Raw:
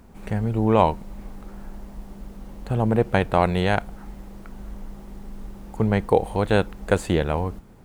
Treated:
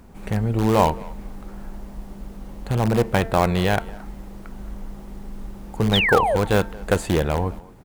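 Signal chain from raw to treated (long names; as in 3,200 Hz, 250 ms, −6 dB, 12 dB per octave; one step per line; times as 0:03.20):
hum removal 225 Hz, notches 9
in parallel at −10 dB: wrap-around overflow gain 14.5 dB
on the sum: sound drawn into the spectrogram fall, 0:05.93–0:06.37, 470–3,900 Hz −20 dBFS
far-end echo of a speakerphone 220 ms, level −20 dB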